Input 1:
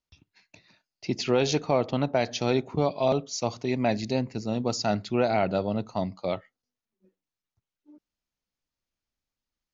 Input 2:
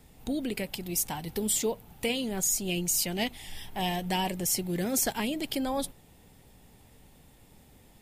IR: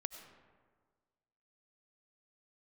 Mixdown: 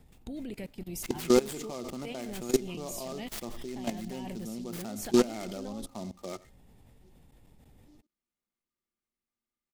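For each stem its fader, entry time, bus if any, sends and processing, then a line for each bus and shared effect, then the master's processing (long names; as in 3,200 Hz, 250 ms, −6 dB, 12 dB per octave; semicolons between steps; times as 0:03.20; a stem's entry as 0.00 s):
−1.5 dB, 0.00 s, no send, echo send −19.5 dB, low-shelf EQ 330 Hz −5 dB; hollow resonant body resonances 230/350/1,200/2,100 Hz, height 13 dB, ringing for 60 ms; short delay modulated by noise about 4,800 Hz, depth 0.058 ms
−5.0 dB, 0.00 s, send −6.5 dB, no echo send, spectral tilt −1.5 dB per octave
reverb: on, RT60 1.6 s, pre-delay 55 ms
echo: single-tap delay 86 ms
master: output level in coarse steps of 19 dB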